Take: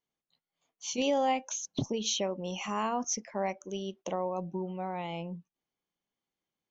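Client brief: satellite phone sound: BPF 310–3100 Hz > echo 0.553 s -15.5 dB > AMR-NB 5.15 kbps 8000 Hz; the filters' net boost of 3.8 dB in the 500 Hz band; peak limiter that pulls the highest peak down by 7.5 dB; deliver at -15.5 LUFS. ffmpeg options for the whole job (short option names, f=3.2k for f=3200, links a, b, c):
-af "equalizer=f=500:t=o:g=5,alimiter=limit=-24dB:level=0:latency=1,highpass=310,lowpass=3.1k,aecho=1:1:553:0.168,volume=22dB" -ar 8000 -c:a libopencore_amrnb -b:a 5150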